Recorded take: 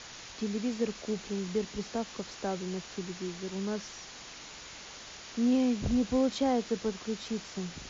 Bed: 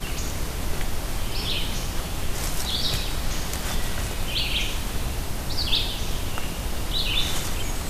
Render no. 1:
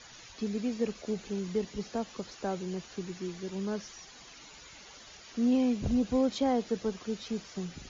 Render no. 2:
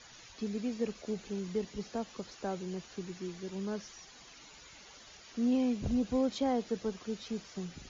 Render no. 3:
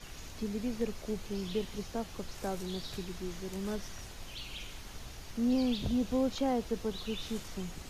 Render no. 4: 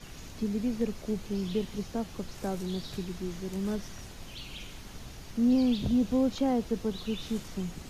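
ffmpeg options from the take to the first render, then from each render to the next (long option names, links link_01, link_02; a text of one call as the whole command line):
ffmpeg -i in.wav -af "afftdn=noise_reduction=10:noise_floor=-47" out.wav
ffmpeg -i in.wav -af "volume=-3dB" out.wav
ffmpeg -i in.wav -i bed.wav -filter_complex "[1:a]volume=-19dB[link_01];[0:a][link_01]amix=inputs=2:normalize=0" out.wav
ffmpeg -i in.wav -af "equalizer=frequency=190:width=0.69:gain=6" out.wav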